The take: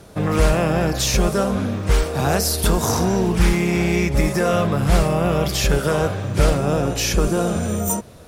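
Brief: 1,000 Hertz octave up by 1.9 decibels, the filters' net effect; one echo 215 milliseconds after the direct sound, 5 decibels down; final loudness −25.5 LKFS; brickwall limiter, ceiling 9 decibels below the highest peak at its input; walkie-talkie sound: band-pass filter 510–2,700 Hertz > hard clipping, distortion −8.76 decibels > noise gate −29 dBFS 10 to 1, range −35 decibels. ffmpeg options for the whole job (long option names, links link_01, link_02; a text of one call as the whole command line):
ffmpeg -i in.wav -af "equalizer=frequency=1000:width_type=o:gain=3.5,alimiter=limit=-13dB:level=0:latency=1,highpass=510,lowpass=2700,aecho=1:1:215:0.562,asoftclip=type=hard:threshold=-27.5dB,agate=range=-35dB:threshold=-29dB:ratio=10,volume=7.5dB" out.wav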